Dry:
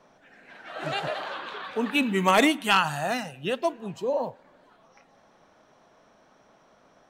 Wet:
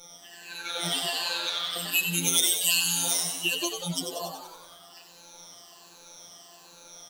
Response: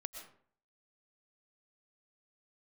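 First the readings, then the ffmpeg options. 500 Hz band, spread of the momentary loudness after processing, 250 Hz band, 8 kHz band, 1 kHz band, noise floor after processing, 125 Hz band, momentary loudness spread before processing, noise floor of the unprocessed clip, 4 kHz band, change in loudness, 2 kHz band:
-11.0 dB, 16 LU, -10.0 dB, +16.0 dB, -11.5 dB, -52 dBFS, -2.5 dB, 14 LU, -60 dBFS, +6.5 dB, +0.5 dB, -3.0 dB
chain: -filter_complex "[0:a]afftfilt=real='re*pow(10,23/40*sin(2*PI*(1.4*log(max(b,1)*sr/1024/100)/log(2)-(-1.3)*(pts-256)/sr)))':imag='im*pow(10,23/40*sin(2*PI*(1.4*log(max(b,1)*sr/1024/100)/log(2)-(-1.3)*(pts-256)/sr)))':win_size=1024:overlap=0.75,highshelf=f=8400:g=9,acrossover=split=210|3000[s0][s1][s2];[s1]acompressor=threshold=0.0562:ratio=8[s3];[s0][s3][s2]amix=inputs=3:normalize=0,aexciter=amount=6.6:drive=4.7:freq=2800,acompressor=threshold=0.0447:ratio=2,afftfilt=real='hypot(re,im)*cos(PI*b)':imag='0':win_size=1024:overlap=0.75,asplit=9[s4][s5][s6][s7][s8][s9][s10][s11][s12];[s5]adelay=94,afreqshift=98,volume=0.447[s13];[s6]adelay=188,afreqshift=196,volume=0.275[s14];[s7]adelay=282,afreqshift=294,volume=0.172[s15];[s8]adelay=376,afreqshift=392,volume=0.106[s16];[s9]adelay=470,afreqshift=490,volume=0.0661[s17];[s10]adelay=564,afreqshift=588,volume=0.0407[s18];[s11]adelay=658,afreqshift=686,volume=0.0254[s19];[s12]adelay=752,afreqshift=784,volume=0.0157[s20];[s4][s13][s14][s15][s16][s17][s18][s19][s20]amix=inputs=9:normalize=0"

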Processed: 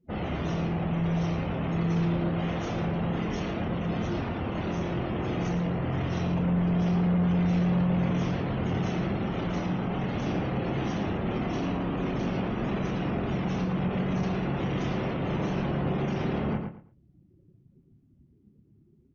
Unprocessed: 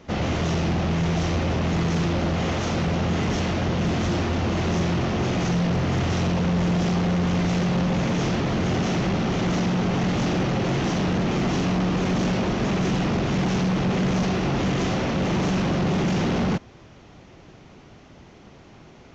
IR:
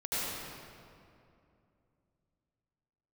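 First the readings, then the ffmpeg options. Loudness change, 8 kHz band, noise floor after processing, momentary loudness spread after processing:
-5.5 dB, no reading, -61 dBFS, 6 LU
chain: -filter_complex "[0:a]afftdn=nr=34:nf=-36,asplit=2[s0][s1];[s1]adelay=29,volume=0.398[s2];[s0][s2]amix=inputs=2:normalize=0,asplit=2[s3][s4];[s4]adelay=113,lowpass=f=2600:p=1,volume=0.562,asplit=2[s5][s6];[s6]adelay=113,lowpass=f=2600:p=1,volume=0.24,asplit=2[s7][s8];[s8]adelay=113,lowpass=f=2600:p=1,volume=0.24[s9];[s5][s7][s9]amix=inputs=3:normalize=0[s10];[s3][s10]amix=inputs=2:normalize=0,volume=0.422"

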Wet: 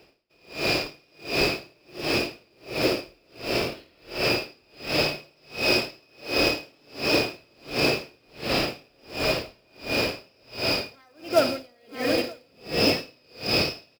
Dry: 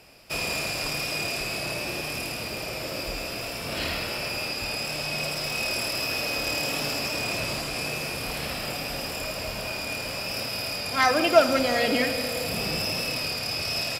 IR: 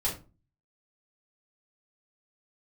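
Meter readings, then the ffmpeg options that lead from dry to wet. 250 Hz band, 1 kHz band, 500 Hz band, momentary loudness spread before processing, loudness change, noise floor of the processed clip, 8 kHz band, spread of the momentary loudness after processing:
+3.0 dB, -3.5 dB, +1.0 dB, 8 LU, +1.0 dB, -61 dBFS, -6.5 dB, 19 LU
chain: -filter_complex "[0:a]equalizer=f=370:t=o:w=1:g=11,dynaudnorm=f=170:g=3:m=3.98,highshelf=f=6500:t=q:w=1.5:g=-12,acrusher=bits=4:mode=log:mix=0:aa=0.000001,asplit=2[s0][s1];[s1]aecho=0:1:942:0.473[s2];[s0][s2]amix=inputs=2:normalize=0,aeval=exprs='val(0)*pow(10,-40*(0.5-0.5*cos(2*PI*1.4*n/s))/20)':c=same,volume=0.531"

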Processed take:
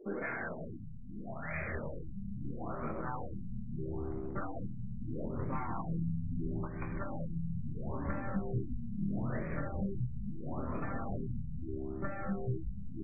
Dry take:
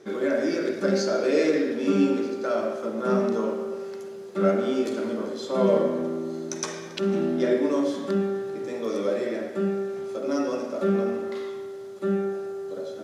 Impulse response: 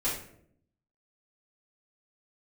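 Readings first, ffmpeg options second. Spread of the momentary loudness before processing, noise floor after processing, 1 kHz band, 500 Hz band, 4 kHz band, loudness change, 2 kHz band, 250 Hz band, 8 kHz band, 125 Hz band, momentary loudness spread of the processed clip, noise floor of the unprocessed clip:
10 LU, -43 dBFS, -8.5 dB, -20.0 dB, under -40 dB, -13.5 dB, -8.0 dB, -13.0 dB, under -40 dB, -0.5 dB, 6 LU, -38 dBFS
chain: -filter_complex "[0:a]afftfilt=real='re*gte(hypot(re,im),0.00562)':imag='im*gte(hypot(re,im),0.00562)':win_size=1024:overlap=0.75,agate=range=0.282:threshold=0.0398:ratio=16:detection=peak,afftfilt=real='re*lt(hypot(re,im),0.141)':imag='im*lt(hypot(re,im),0.141)':win_size=1024:overlap=0.75,equalizer=f=81:t=o:w=0.27:g=-6.5,asplit=6[s0][s1][s2][s3][s4][s5];[s1]adelay=184,afreqshift=-70,volume=0.422[s6];[s2]adelay=368,afreqshift=-140,volume=0.186[s7];[s3]adelay=552,afreqshift=-210,volume=0.0813[s8];[s4]adelay=736,afreqshift=-280,volume=0.0359[s9];[s5]adelay=920,afreqshift=-350,volume=0.0158[s10];[s0][s6][s7][s8][s9][s10]amix=inputs=6:normalize=0,acompressor=threshold=0.00562:ratio=8,aeval=exprs='0.0168*(cos(1*acos(clip(val(0)/0.0168,-1,1)))-cos(1*PI/2))+0.00133*(cos(2*acos(clip(val(0)/0.0168,-1,1)))-cos(2*PI/2))+0.000168*(cos(3*acos(clip(val(0)/0.0168,-1,1)))-cos(3*PI/2))+0.00133*(cos(4*acos(clip(val(0)/0.0168,-1,1)))-cos(4*PI/2))':c=same,asplit=2[s11][s12];[s12]adelay=25,volume=0.473[s13];[s11][s13]amix=inputs=2:normalize=0,asubboost=boost=7:cutoff=150,afftfilt=real='re*lt(b*sr/1024,220*pow(2600/220,0.5+0.5*sin(2*PI*0.76*pts/sr)))':imag='im*lt(b*sr/1024,220*pow(2600/220,0.5+0.5*sin(2*PI*0.76*pts/sr)))':win_size=1024:overlap=0.75,volume=2.82"

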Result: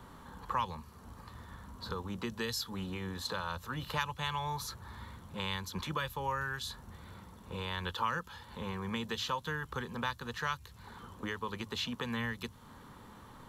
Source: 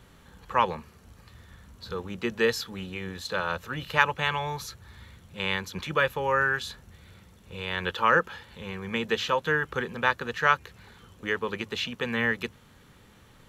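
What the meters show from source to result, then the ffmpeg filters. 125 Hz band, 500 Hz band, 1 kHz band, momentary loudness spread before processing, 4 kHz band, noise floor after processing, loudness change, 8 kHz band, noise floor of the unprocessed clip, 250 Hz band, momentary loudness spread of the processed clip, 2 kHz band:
-3.5 dB, -13.0 dB, -8.5 dB, 14 LU, -5.5 dB, -54 dBFS, -10.0 dB, -2.5 dB, -56 dBFS, -5.5 dB, 16 LU, -12.5 dB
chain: -filter_complex "[0:a]acrossover=split=130|3000[s0][s1][s2];[s1]acompressor=threshold=0.00891:ratio=6[s3];[s0][s3][s2]amix=inputs=3:normalize=0,equalizer=f=250:t=o:w=0.67:g=5,equalizer=f=1000:t=o:w=0.67:g=11,equalizer=f=2500:t=o:w=0.67:g=-6,equalizer=f=6300:t=o:w=0.67:g=-3"

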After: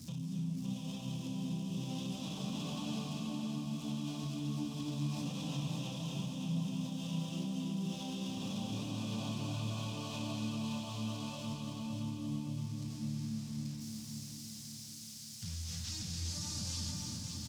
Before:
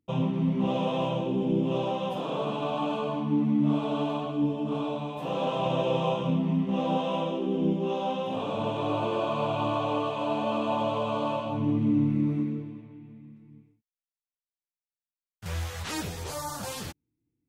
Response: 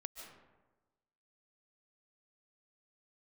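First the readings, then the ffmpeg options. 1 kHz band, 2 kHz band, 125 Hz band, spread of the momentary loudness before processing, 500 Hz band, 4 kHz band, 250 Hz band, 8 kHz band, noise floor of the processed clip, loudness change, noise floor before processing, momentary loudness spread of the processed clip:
-19.5 dB, -11.0 dB, -6.0 dB, 9 LU, -22.0 dB, -3.5 dB, -10.0 dB, no reading, -47 dBFS, -11.0 dB, under -85 dBFS, 4 LU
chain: -filter_complex "[0:a]aeval=exprs='val(0)+0.5*0.00841*sgn(val(0))':c=same,highpass=87,bandreject=f=50:t=h:w=6,bandreject=f=100:t=h:w=6,bandreject=f=150:t=h:w=6,bandreject=f=200:t=h:w=6,acrossover=split=6900[s0][s1];[s1]acompressor=threshold=0.00224:ratio=4:attack=1:release=60[s2];[s0][s2]amix=inputs=2:normalize=0,firequalizer=gain_entry='entry(220,0);entry(370,-23);entry(1500,-18);entry(5100,7);entry(11000,-3)':delay=0.05:min_phase=1,acrossover=split=6300[s3][s4];[s3]acompressor=threshold=0.0158:ratio=6[s5];[s5][s4]amix=inputs=2:normalize=0,alimiter=level_in=4.73:limit=0.0631:level=0:latency=1:release=68,volume=0.211,aecho=1:1:567|1134|1701|2268|2835|3402:0.562|0.276|0.135|0.0662|0.0324|0.0159[s6];[1:a]atrim=start_sample=2205,asetrate=25578,aresample=44100[s7];[s6][s7]afir=irnorm=-1:irlink=0,volume=2"

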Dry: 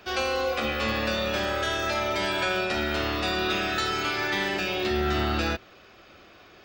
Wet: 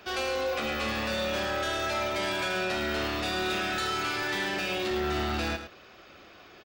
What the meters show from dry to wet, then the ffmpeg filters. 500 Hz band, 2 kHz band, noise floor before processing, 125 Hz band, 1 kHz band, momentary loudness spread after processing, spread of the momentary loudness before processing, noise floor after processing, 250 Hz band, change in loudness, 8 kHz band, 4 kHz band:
-3.0 dB, -3.0 dB, -53 dBFS, -5.0 dB, -3.0 dB, 1 LU, 1 LU, -52 dBFS, -3.5 dB, -3.0 dB, -0.5 dB, -3.0 dB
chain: -filter_complex "[0:a]lowshelf=f=120:g=-4.5,asoftclip=type=tanh:threshold=0.0473,asplit=2[s0][s1];[s1]aecho=0:1:108:0.316[s2];[s0][s2]amix=inputs=2:normalize=0"

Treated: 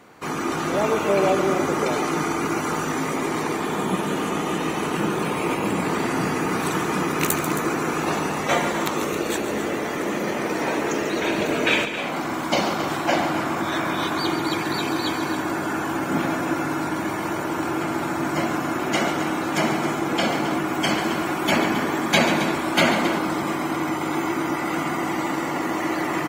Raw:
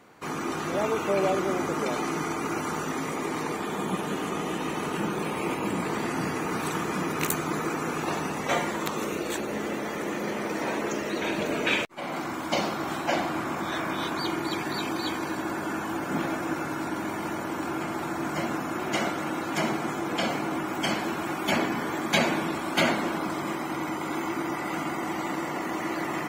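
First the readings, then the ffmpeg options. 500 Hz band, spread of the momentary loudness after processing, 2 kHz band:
+5.5 dB, 5 LU, +5.5 dB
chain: -af "aecho=1:1:140|269:0.299|0.266,volume=1.78"

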